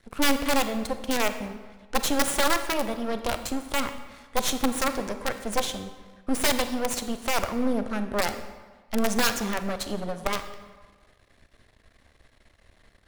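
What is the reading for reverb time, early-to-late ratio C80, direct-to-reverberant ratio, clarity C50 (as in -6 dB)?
1.4 s, 12.0 dB, 9.0 dB, 10.0 dB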